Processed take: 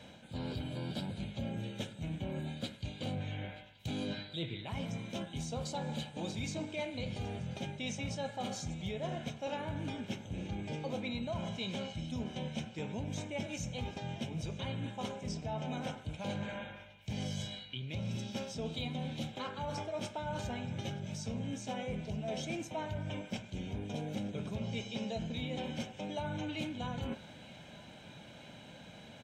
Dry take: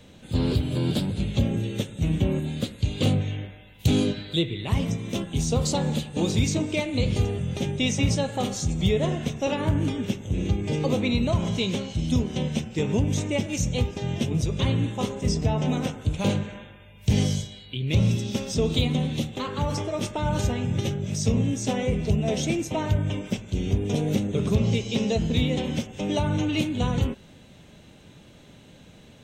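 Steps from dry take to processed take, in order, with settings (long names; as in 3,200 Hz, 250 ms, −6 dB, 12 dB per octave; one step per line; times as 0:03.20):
high-pass filter 280 Hz 6 dB per octave
high-shelf EQ 6,200 Hz −11.5 dB
comb filter 1.3 ms, depth 48%
reversed playback
downward compressor 4 to 1, threshold −39 dBFS, peak gain reduction 15 dB
reversed playback
feedback echo with a band-pass in the loop 927 ms, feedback 81%, band-pass 2,600 Hz, level −18 dB
on a send at −14.5 dB: convolution reverb, pre-delay 3 ms
on the sum: level +1 dB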